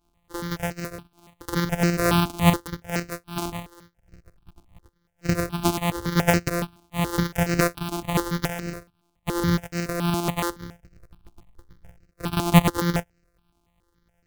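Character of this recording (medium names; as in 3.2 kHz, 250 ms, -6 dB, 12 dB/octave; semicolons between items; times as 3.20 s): a buzz of ramps at a fixed pitch in blocks of 256 samples; tremolo saw up 10 Hz, depth 45%; notches that jump at a steady rate 7.1 Hz 500–3400 Hz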